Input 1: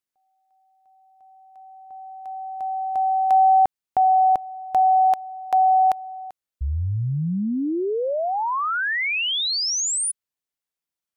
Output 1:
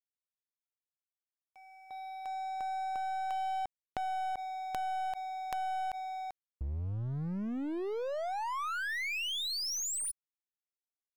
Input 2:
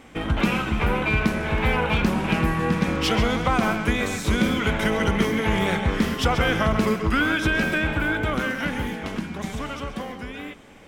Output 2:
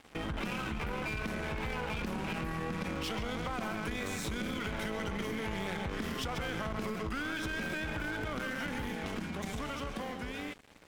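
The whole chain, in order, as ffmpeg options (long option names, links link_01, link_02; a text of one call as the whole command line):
ffmpeg -i in.wav -af "aeval=exprs='0.422*(cos(1*acos(clip(val(0)/0.422,-1,1)))-cos(1*PI/2))+0.0211*(cos(6*acos(clip(val(0)/0.422,-1,1)))-cos(6*PI/2))':channel_layout=same,acompressor=threshold=-33dB:ratio=8:attack=6.1:release=27:knee=6:detection=rms,aeval=exprs='sgn(val(0))*max(abs(val(0))-0.00501,0)':channel_layout=same" out.wav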